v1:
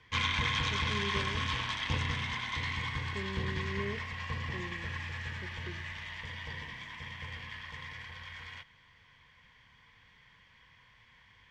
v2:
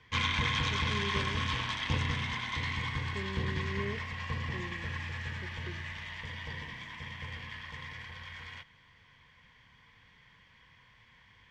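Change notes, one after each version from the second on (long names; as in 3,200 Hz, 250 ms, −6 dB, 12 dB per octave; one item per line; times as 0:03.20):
background: add parametric band 210 Hz +3 dB 2.6 octaves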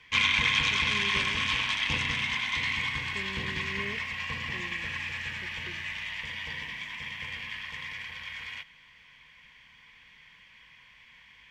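background: add high-shelf EQ 6,300 Hz +11.5 dB
master: add graphic EQ with 15 bands 100 Hz −11 dB, 400 Hz −3 dB, 2,500 Hz +10 dB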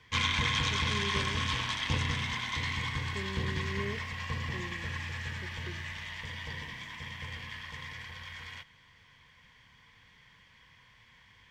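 master: add graphic EQ with 15 bands 100 Hz +11 dB, 400 Hz +3 dB, 2,500 Hz −10 dB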